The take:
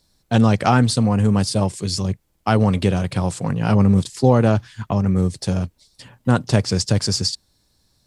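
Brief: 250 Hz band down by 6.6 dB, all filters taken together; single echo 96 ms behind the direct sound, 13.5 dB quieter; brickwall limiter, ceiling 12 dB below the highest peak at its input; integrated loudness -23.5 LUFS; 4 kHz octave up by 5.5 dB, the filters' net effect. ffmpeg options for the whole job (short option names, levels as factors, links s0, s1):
-af "equalizer=f=250:t=o:g=-9,equalizer=f=4000:t=o:g=7,alimiter=limit=0.2:level=0:latency=1,aecho=1:1:96:0.211,volume=1.12"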